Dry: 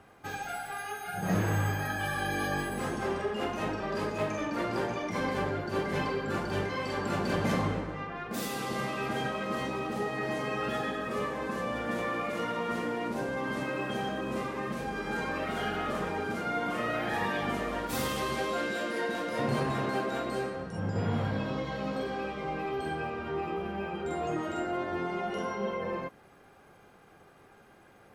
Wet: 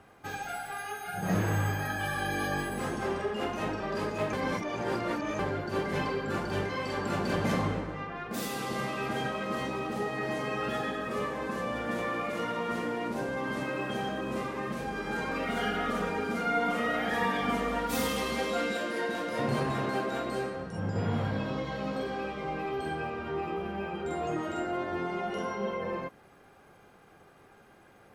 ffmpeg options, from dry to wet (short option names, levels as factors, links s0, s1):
-filter_complex "[0:a]asettb=1/sr,asplit=3[s0][s1][s2];[s0]atrim=end=15.314[s3];[s1]atrim=start=15.31:end=18.77,asetpts=PTS-STARTPTS,afade=t=in:d=0.004:c=qsin,afade=t=out:st=3.456:d=0.004:c=qsin,aecho=1:1:4.2:0.67,atrim=end_sample=152586[s4];[s2]atrim=start=18.766[s5];[s3][s4]acrossfade=d=0.004:c1=hsin:c2=qsin[s6];[s6][s5]acrossfade=d=0.004:c1=qsin:c2=hsin,asplit=3[s7][s8][s9];[s7]atrim=end=4.332[s10];[s8]atrim=start=4.328:end=5.392,asetpts=PTS-STARTPTS,areverse[s11];[s9]atrim=start=5.388[s12];[s10][s11]acrossfade=d=0.004:c1=hsin:c2=hsin[s13];[s13][s12]acrossfade=d=0.004:c1=hsin:c2=hsin"